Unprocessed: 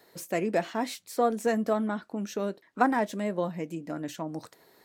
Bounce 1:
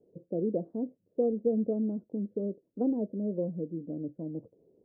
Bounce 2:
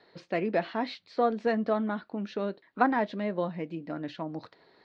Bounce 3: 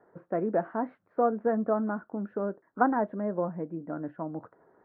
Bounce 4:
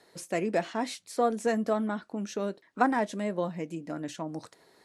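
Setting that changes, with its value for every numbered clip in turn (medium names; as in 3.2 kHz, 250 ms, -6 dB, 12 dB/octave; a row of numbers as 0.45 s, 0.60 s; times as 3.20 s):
Chebyshev low-pass, frequency: 510 Hz, 4.4 kHz, 1.5 kHz, 11 kHz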